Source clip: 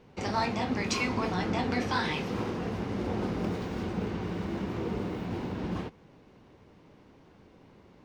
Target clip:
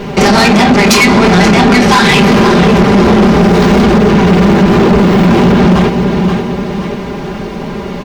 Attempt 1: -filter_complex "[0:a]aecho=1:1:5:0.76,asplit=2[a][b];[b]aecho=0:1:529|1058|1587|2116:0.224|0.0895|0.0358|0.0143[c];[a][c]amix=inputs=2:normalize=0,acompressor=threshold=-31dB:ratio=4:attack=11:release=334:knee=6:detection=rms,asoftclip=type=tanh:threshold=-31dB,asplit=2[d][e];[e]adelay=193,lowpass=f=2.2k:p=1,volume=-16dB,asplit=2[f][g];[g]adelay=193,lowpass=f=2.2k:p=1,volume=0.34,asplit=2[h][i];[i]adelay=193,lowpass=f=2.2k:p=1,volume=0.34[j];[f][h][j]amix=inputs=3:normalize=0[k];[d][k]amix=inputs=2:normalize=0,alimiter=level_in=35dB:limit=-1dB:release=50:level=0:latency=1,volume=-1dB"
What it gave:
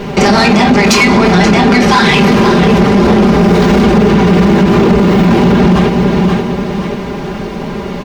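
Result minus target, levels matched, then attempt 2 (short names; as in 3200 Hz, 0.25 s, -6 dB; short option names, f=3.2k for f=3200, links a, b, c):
soft clip: distortion -6 dB
-filter_complex "[0:a]aecho=1:1:5:0.76,asplit=2[a][b];[b]aecho=0:1:529|1058|1587|2116:0.224|0.0895|0.0358|0.0143[c];[a][c]amix=inputs=2:normalize=0,acompressor=threshold=-31dB:ratio=4:attack=11:release=334:knee=6:detection=rms,asoftclip=type=tanh:threshold=-37.5dB,asplit=2[d][e];[e]adelay=193,lowpass=f=2.2k:p=1,volume=-16dB,asplit=2[f][g];[g]adelay=193,lowpass=f=2.2k:p=1,volume=0.34,asplit=2[h][i];[i]adelay=193,lowpass=f=2.2k:p=1,volume=0.34[j];[f][h][j]amix=inputs=3:normalize=0[k];[d][k]amix=inputs=2:normalize=0,alimiter=level_in=35dB:limit=-1dB:release=50:level=0:latency=1,volume=-1dB"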